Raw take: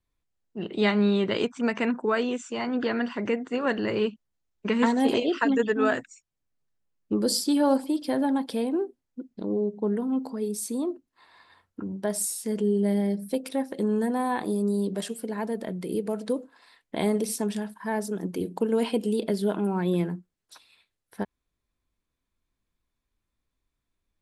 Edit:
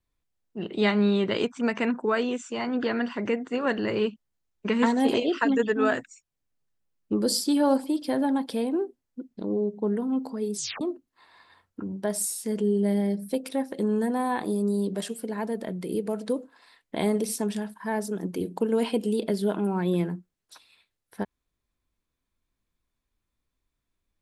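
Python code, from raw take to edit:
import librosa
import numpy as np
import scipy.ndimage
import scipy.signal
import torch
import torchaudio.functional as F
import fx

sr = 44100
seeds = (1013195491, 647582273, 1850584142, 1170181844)

y = fx.edit(x, sr, fx.tape_stop(start_s=10.55, length_s=0.26), tone=tone)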